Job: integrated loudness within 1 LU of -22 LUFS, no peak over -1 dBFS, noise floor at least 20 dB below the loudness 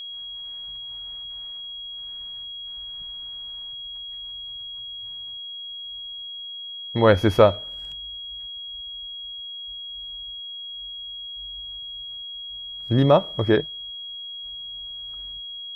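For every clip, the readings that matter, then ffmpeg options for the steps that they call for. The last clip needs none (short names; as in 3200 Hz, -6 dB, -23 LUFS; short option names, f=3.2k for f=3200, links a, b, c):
steady tone 3300 Hz; tone level -33 dBFS; loudness -27.5 LUFS; peak -2.0 dBFS; loudness target -22.0 LUFS
-> -af "bandreject=f=3.3k:w=30"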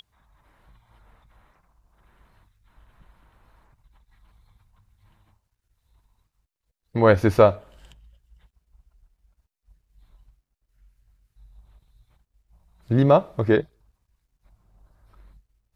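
steady tone none; loudness -19.5 LUFS; peak -2.0 dBFS; loudness target -22.0 LUFS
-> -af "volume=-2.5dB"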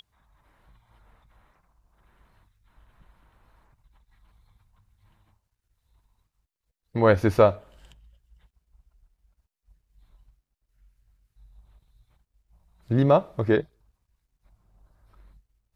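loudness -22.0 LUFS; peak -4.5 dBFS; noise floor -83 dBFS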